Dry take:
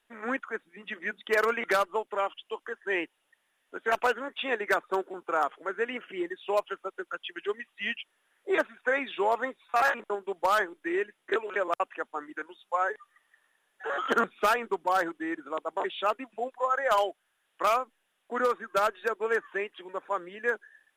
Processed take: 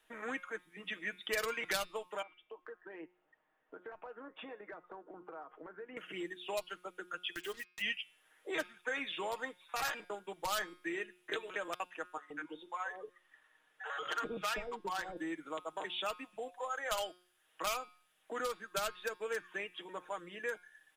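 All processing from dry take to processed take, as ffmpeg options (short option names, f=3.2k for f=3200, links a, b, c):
-filter_complex "[0:a]asettb=1/sr,asplit=3[a][b][c];[a]atrim=end=2.224[d];[b]atrim=start=2.22:end=5.97,asetpts=PTS-STARTPTS,afade=t=in:d=0.004:c=qsin,afade=t=out:st=3.746:d=0.004:c=qsin,lowpass=1.2k,acompressor=threshold=-45dB:ratio=4:attack=3.2:release=140:knee=1:detection=peak[e];[c]atrim=start=5.966[f];[d][e]acrossfade=d=0.004:c1=hsin:c2=qsin[g];[g][f]acrossfade=d=0.004:c1=qsin:c2=hsin,asettb=1/sr,asplit=3[h][i][j];[h]atrim=end=7.354[k];[i]atrim=start=7.35:end=7.82,asetpts=PTS-STARTPTS,afade=t=in:d=0.004:c=qsin,afade=t=out:st=0.466:d=0.004:c=qsin,acrusher=bits=7:mix=0:aa=0.5,acompressor=mode=upward:threshold=-39dB:ratio=2.5:attack=3.2:release=140:knee=2.83:detection=peak[l];[j]atrim=start=7.816[m];[k][l]acrossfade=d=0.004:c1=hsin:c2=qsin[n];[n][m]acrossfade=d=0.004:c1=qsin:c2=hsin,asettb=1/sr,asplit=3[o][p][q];[o]atrim=end=12.174[r];[p]atrim=start=12.17:end=15.17,asetpts=PTS-STARTPTS,afade=t=in:d=0.004:c=qsin,afade=t=out:st=2.996:d=0.004:c=qsin,lowpass=f=3.6k:p=1,acrossover=split=590[s][t];[s]adelay=130[u];[u][t]amix=inputs=2:normalize=0,atrim=end_sample=132300[v];[q]atrim=start=15.166[w];[r][v]acrossfade=d=0.004:c1=hsin:c2=qsin[x];[x][w]acrossfade=d=0.004:c1=qsin:c2=hsin,aecho=1:1:6.4:0.48,acrossover=split=150|3000[y][z][aa];[z]acompressor=threshold=-52dB:ratio=2[ab];[y][ab][aa]amix=inputs=3:normalize=0,bandreject=f=179.6:t=h:w=4,bandreject=f=359.2:t=h:w=4,bandreject=f=538.8:t=h:w=4,bandreject=f=718.4:t=h:w=4,bandreject=f=898:t=h:w=4,bandreject=f=1.0776k:t=h:w=4,bandreject=f=1.2572k:t=h:w=4,bandreject=f=1.4368k:t=h:w=4,bandreject=f=1.6164k:t=h:w=4,bandreject=f=1.796k:t=h:w=4,bandreject=f=1.9756k:t=h:w=4,bandreject=f=2.1552k:t=h:w=4,bandreject=f=2.3348k:t=h:w=4,bandreject=f=2.5144k:t=h:w=4,bandreject=f=2.694k:t=h:w=4,bandreject=f=2.8736k:t=h:w=4,bandreject=f=3.0532k:t=h:w=4,bandreject=f=3.2328k:t=h:w=4,bandreject=f=3.4124k:t=h:w=4,bandreject=f=3.592k:t=h:w=4,bandreject=f=3.7716k:t=h:w=4,bandreject=f=3.9512k:t=h:w=4,bandreject=f=4.1308k:t=h:w=4,bandreject=f=4.3104k:t=h:w=4,bandreject=f=4.49k:t=h:w=4,bandreject=f=4.6696k:t=h:w=4,bandreject=f=4.8492k:t=h:w=4,bandreject=f=5.0288k:t=h:w=4,bandreject=f=5.2084k:t=h:w=4,bandreject=f=5.388k:t=h:w=4,bandreject=f=5.5676k:t=h:w=4,volume=2dB"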